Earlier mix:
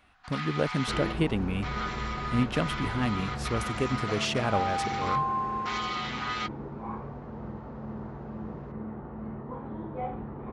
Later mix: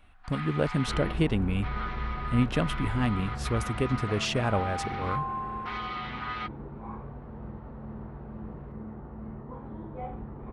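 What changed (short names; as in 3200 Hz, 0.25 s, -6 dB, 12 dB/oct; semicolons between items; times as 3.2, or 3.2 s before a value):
first sound: add air absorption 310 m; second sound -4.5 dB; master: remove HPF 130 Hz 6 dB/oct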